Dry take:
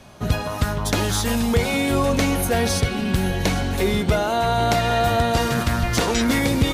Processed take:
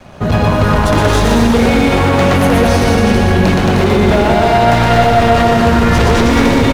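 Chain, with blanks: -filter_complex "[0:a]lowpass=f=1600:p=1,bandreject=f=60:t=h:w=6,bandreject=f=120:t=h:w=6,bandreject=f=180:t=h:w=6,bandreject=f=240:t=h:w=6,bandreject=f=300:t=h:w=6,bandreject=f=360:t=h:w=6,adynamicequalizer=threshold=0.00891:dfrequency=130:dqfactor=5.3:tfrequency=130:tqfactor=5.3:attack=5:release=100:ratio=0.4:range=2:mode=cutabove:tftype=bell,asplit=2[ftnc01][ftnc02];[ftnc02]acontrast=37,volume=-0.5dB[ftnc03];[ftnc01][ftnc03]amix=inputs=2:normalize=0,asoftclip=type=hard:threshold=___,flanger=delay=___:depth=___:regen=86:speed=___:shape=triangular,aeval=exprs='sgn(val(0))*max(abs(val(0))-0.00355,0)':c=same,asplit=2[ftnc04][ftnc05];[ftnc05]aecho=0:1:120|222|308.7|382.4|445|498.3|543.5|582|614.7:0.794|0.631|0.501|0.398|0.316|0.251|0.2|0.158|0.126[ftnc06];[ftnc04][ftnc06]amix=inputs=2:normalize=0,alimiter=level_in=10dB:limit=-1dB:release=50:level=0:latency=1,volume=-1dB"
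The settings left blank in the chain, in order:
-13.5dB, 5.1, 9.1, 0.6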